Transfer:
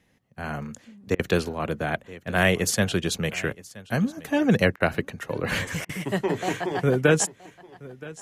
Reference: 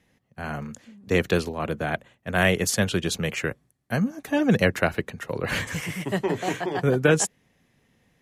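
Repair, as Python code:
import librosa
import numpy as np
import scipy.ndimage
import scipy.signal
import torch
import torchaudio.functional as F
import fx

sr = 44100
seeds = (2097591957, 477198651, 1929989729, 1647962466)

y = fx.fix_interpolate(x, sr, at_s=(1.15, 4.76, 5.85), length_ms=41.0)
y = fx.fix_echo_inverse(y, sr, delay_ms=973, level_db=-20.0)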